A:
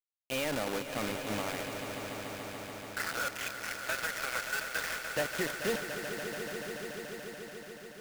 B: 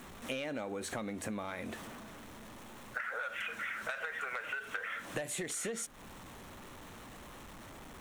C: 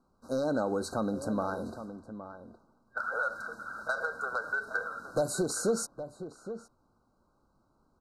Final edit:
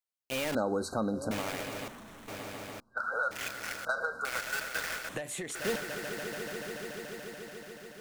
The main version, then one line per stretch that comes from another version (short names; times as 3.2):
A
0.55–1.31 from C
1.88–2.28 from B
2.8–3.31 from C
3.85–4.25 from C
5.09–5.55 from B